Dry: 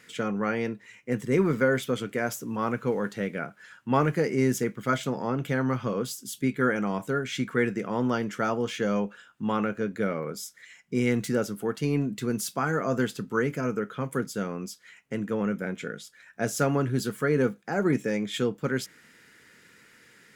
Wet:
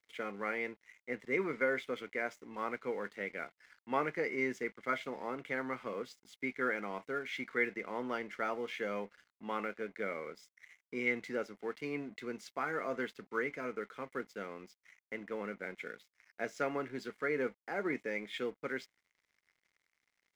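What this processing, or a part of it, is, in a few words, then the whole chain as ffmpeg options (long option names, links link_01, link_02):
pocket radio on a weak battery: -af "highpass=340,lowpass=4000,aeval=exprs='sgn(val(0))*max(abs(val(0))-0.00266,0)':channel_layout=same,equalizer=frequency=2100:width_type=o:width=0.25:gain=11.5,volume=-8dB"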